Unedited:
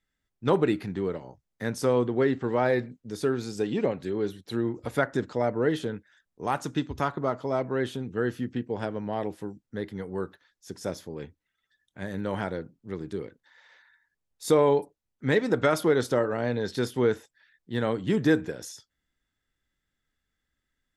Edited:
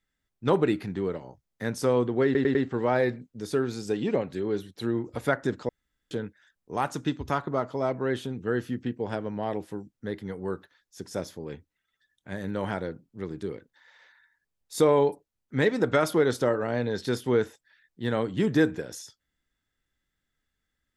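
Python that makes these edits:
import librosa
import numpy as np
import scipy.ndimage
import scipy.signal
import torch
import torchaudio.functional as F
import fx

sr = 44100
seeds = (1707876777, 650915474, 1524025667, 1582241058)

y = fx.edit(x, sr, fx.stutter(start_s=2.25, slice_s=0.1, count=4),
    fx.room_tone_fill(start_s=5.39, length_s=0.42), tone=tone)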